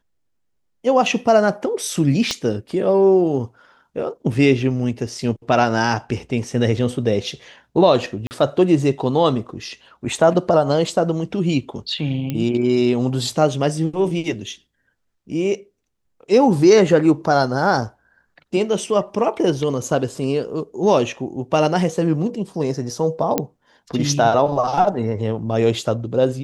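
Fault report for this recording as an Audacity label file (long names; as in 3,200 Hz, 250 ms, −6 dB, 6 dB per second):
2.310000	2.310000	click −8 dBFS
8.270000	8.310000	drop-out 39 ms
12.300000	12.300000	click −12 dBFS
23.380000	23.380000	click −4 dBFS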